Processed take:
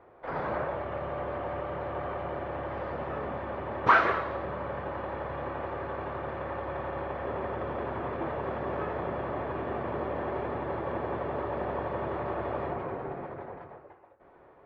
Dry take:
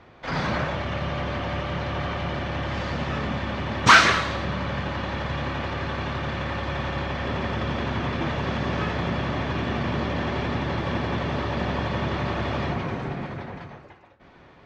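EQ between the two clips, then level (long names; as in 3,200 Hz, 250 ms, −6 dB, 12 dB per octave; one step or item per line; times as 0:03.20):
low-pass filter 1,200 Hz 12 dB per octave
low shelf with overshoot 300 Hz −8.5 dB, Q 1.5
−3.0 dB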